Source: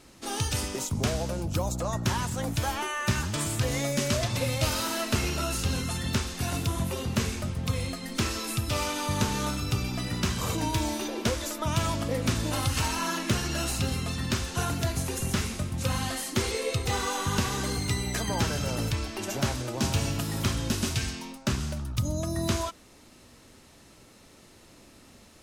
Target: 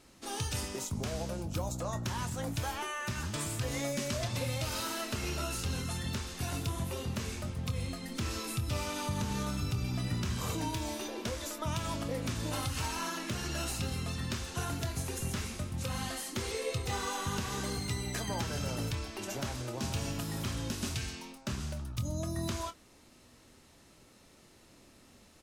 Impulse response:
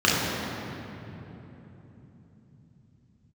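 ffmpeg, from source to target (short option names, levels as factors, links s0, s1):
-filter_complex "[0:a]asettb=1/sr,asplit=3[s0][s1][s2];[s0]atrim=end=7.694[s3];[s1]atrim=start=7.69:end=10.37,asetpts=PTS-STARTPTS,afade=t=in:d=0.004:c=qsin,afade=t=out:st=2.676:d=0.004:c=qsin,equalizer=f=100:w=0.5:g=6[s4];[s2]atrim=start=10.366[s5];[s3][s4]acrossfade=d=0.004:c1=hsin:c2=qsin[s6];[s6][s5]acrossfade=d=0.004:c1=qsin:c2=hsin,alimiter=limit=0.126:level=0:latency=1:release=138,asplit=2[s7][s8];[s8]adelay=25,volume=0.266[s9];[s7][s9]amix=inputs=2:normalize=0,volume=0.501"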